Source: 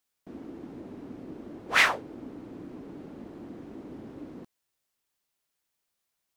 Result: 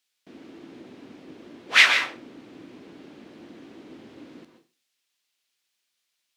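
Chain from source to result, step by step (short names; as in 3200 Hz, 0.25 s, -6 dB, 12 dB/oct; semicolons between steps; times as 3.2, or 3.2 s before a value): weighting filter D; reverb RT60 0.35 s, pre-delay 0.109 s, DRR 6 dB; gain -2.5 dB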